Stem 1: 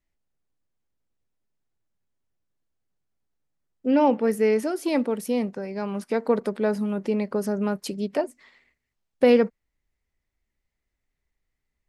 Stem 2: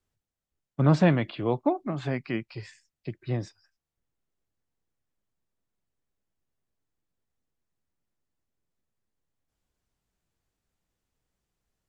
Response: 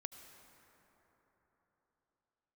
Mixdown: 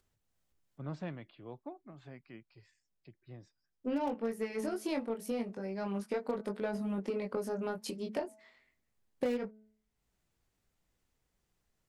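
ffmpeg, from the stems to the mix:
-filter_complex "[0:a]bandreject=f=215.6:t=h:w=4,bandreject=f=431.2:t=h:w=4,bandreject=f=646.8:t=h:w=4,bandreject=f=862.4:t=h:w=4,bandreject=f=1078:t=h:w=4,bandreject=f=1293.6:t=h:w=4,bandreject=f=1509.2:t=h:w=4,flanger=delay=20:depth=2.3:speed=0.31,volume=0.891,asplit=2[s0][s1];[1:a]acompressor=mode=upward:threshold=0.0112:ratio=2.5,volume=0.141[s2];[s1]apad=whole_len=524305[s3];[s2][s3]sidechaincompress=threshold=0.00794:ratio=8:attack=38:release=435[s4];[s0][s4]amix=inputs=2:normalize=0,aeval=exprs='0.178*(cos(1*acos(clip(val(0)/0.178,-1,1)))-cos(1*PI/2))+0.0126*(cos(3*acos(clip(val(0)/0.178,-1,1)))-cos(3*PI/2))+0.00316*(cos(5*acos(clip(val(0)/0.178,-1,1)))-cos(5*PI/2))+0.00631*(cos(7*acos(clip(val(0)/0.178,-1,1)))-cos(7*PI/2))':c=same,acompressor=threshold=0.0282:ratio=6"

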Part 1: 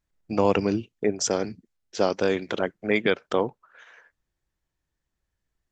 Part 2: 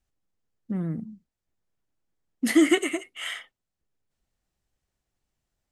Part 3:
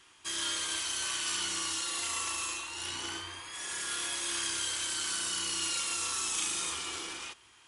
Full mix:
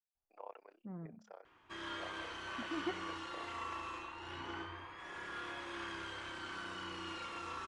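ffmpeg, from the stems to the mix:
-filter_complex "[0:a]highpass=f=610:w=0.5412,highpass=f=610:w=1.3066,tremolo=f=32:d=0.947,volume=0.106,asplit=2[s0][s1];[1:a]equalizer=f=900:w=1.2:g=11,adelay=150,volume=0.133[s2];[2:a]adelay=1450,volume=0.944[s3];[s1]apad=whole_len=258453[s4];[s2][s4]sidechaincompress=threshold=0.00158:ratio=8:attack=12:release=360[s5];[s0][s5][s3]amix=inputs=3:normalize=0,lowpass=1500"

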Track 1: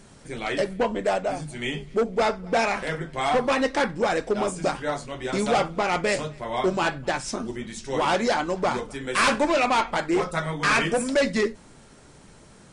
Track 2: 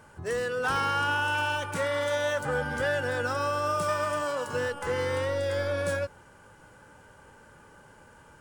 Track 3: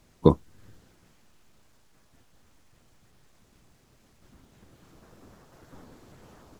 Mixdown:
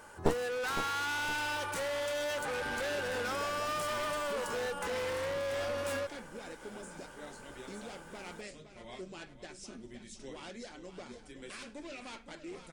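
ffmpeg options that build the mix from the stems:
-filter_complex "[0:a]equalizer=f=940:w=0.86:g=-12,alimiter=level_in=1.06:limit=0.0631:level=0:latency=1:release=464,volume=0.944,adelay=2350,volume=0.251,asplit=2[s0][s1];[s1]volume=0.282[s2];[1:a]asoftclip=type=hard:threshold=0.0282,bass=f=250:g=-8,treble=f=4000:g=3,asoftclip=type=tanh:threshold=0.02,volume=1.26[s3];[2:a]aeval=exprs='max(val(0),0)':c=same,volume=0.447,asplit=2[s4][s5];[s5]volume=0.299[s6];[s2][s6]amix=inputs=2:normalize=0,aecho=0:1:513|1026|1539|2052|2565|3078:1|0.41|0.168|0.0689|0.0283|0.0116[s7];[s0][s3][s4][s7]amix=inputs=4:normalize=0,equalizer=f=140:w=2.9:g=-7"

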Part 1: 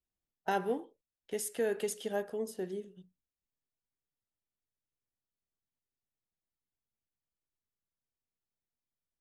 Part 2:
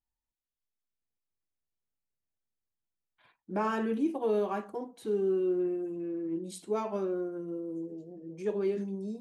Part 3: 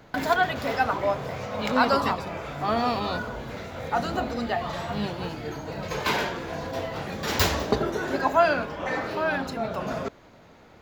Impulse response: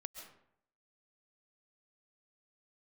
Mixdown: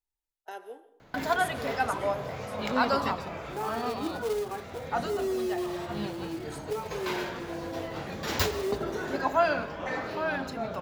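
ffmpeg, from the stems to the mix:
-filter_complex "[0:a]highpass=f=350:w=0.5412,highpass=f=350:w=1.3066,highshelf=f=4800:g=5.5,volume=0.237,asplit=2[s0][s1];[s1]volume=0.668[s2];[1:a]bandreject=f=50:t=h:w=6,bandreject=f=100:t=h:w=6,bandreject=f=150:t=h:w=6,bandreject=f=200:t=h:w=6,bandreject=f=250:t=h:w=6,bandreject=f=300:t=h:w=6,bandreject=f=350:t=h:w=6,aecho=1:1:2.4:0.72,acrusher=bits=3:mode=log:mix=0:aa=0.000001,volume=0.501,asplit=2[s3][s4];[2:a]adelay=1000,volume=0.473,asplit=2[s5][s6];[s6]volume=0.531[s7];[s4]apad=whole_len=521188[s8];[s5][s8]sidechaincompress=threshold=0.0126:ratio=8:attack=6.1:release=246[s9];[3:a]atrim=start_sample=2205[s10];[s2][s7]amix=inputs=2:normalize=0[s11];[s11][s10]afir=irnorm=-1:irlink=0[s12];[s0][s3][s9][s12]amix=inputs=4:normalize=0"

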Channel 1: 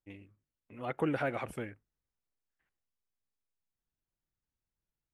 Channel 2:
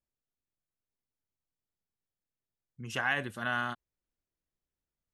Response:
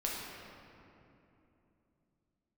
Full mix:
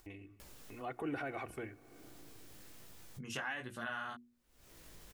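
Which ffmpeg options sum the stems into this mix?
-filter_complex "[0:a]alimiter=level_in=1.41:limit=0.0631:level=0:latency=1:release=11,volume=0.708,bandreject=f=3300:w=23,aecho=1:1:2.7:0.48,volume=0.562,asplit=3[s0][s1][s2];[s1]volume=0.0631[s3];[1:a]acompressor=mode=upward:threshold=0.00708:ratio=2.5,flanger=delay=16:depth=5.1:speed=1.2,acompressor=threshold=0.01:ratio=4,adelay=400,volume=1.19[s4];[s2]apad=whole_len=243999[s5];[s4][s5]sidechaincompress=threshold=0.00501:ratio=8:attack=9:release=951[s6];[2:a]atrim=start_sample=2205[s7];[s3][s7]afir=irnorm=-1:irlink=0[s8];[s0][s6][s8]amix=inputs=3:normalize=0,bandreject=f=60:t=h:w=6,bandreject=f=120:t=h:w=6,bandreject=f=180:t=h:w=6,bandreject=f=240:t=h:w=6,bandreject=f=300:t=h:w=6,bandreject=f=360:t=h:w=6,acompressor=mode=upward:threshold=0.00708:ratio=2.5"

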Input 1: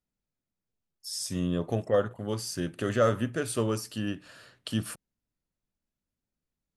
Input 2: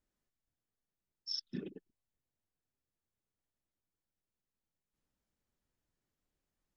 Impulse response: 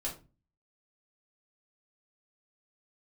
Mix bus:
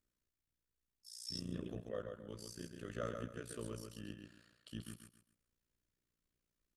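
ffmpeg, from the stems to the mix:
-filter_complex "[0:a]volume=0.211,asplit=2[s0][s1];[s1]volume=0.531[s2];[1:a]alimiter=level_in=3.98:limit=0.0631:level=0:latency=1,volume=0.251,volume=1.41[s3];[s2]aecho=0:1:135|270|405|540:1|0.28|0.0784|0.022[s4];[s0][s3][s4]amix=inputs=3:normalize=0,equalizer=f=780:t=o:w=0.45:g=-11.5,tremolo=f=59:d=0.889"

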